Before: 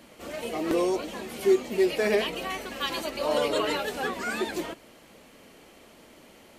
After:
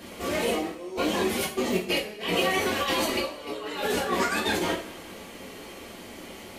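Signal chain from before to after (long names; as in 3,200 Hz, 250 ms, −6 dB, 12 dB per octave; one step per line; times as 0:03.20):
compressor whose output falls as the input rises −33 dBFS, ratio −0.5
coupled-rooms reverb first 0.37 s, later 1.9 s, from −21 dB, DRR −3.5 dB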